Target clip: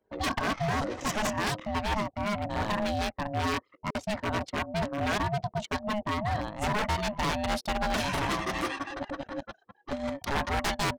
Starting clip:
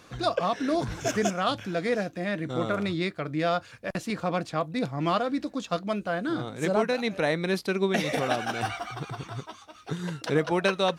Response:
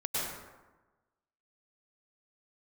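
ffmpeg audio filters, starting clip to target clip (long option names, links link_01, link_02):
-af "anlmdn=0.398,aeval=exprs='val(0)*sin(2*PI*420*n/s)':channel_layout=same,aeval=exprs='0.0596*(abs(mod(val(0)/0.0596+3,4)-2)-1)':channel_layout=same,volume=3dB"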